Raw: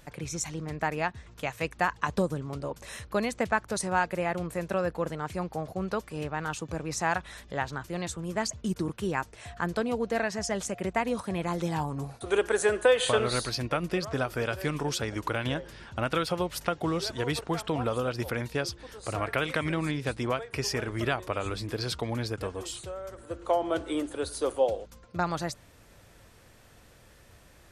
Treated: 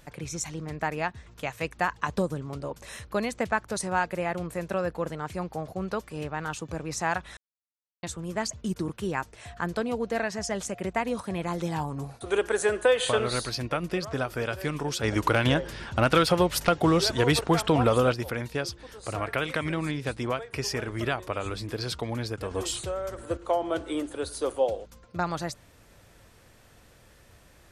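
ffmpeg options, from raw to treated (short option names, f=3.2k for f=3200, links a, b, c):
-filter_complex "[0:a]asplit=3[a][b][c];[a]afade=t=out:st=15.03:d=0.02[d];[b]aeval=exprs='0.282*sin(PI/2*1.58*val(0)/0.282)':c=same,afade=t=in:st=15.03:d=0.02,afade=t=out:st=18.13:d=0.02[e];[c]afade=t=in:st=18.13:d=0.02[f];[d][e][f]amix=inputs=3:normalize=0,asplit=5[g][h][i][j][k];[g]atrim=end=7.37,asetpts=PTS-STARTPTS,afade=t=out:st=7.366:d=0.004:c=hsin[l];[h]atrim=start=7.37:end=8.03,asetpts=PTS-STARTPTS,volume=0[m];[i]atrim=start=8.03:end=22.512,asetpts=PTS-STARTPTS,afade=t=in:d=0.004:c=hsin[n];[j]atrim=start=22.508:end=23.372,asetpts=PTS-STARTPTS,volume=6.5dB[o];[k]atrim=start=23.368[p];[l][m][n]concat=n=3:v=0:a=1[q];[q][o]acrossfade=d=0.004:c1=hsin:c2=hsin[r];[r][p]acrossfade=d=0.004:c1=hsin:c2=hsin"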